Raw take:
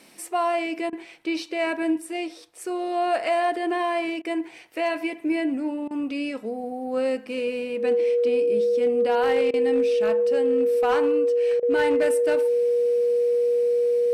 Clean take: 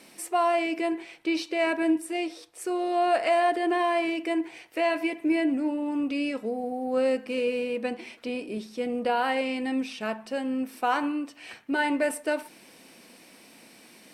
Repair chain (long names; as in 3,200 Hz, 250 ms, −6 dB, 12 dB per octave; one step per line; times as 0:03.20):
clipped peaks rebuilt −15 dBFS
notch filter 480 Hz, Q 30
repair the gap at 0:00.90/0:04.22/0:05.88/0:09.51/0:11.60, 26 ms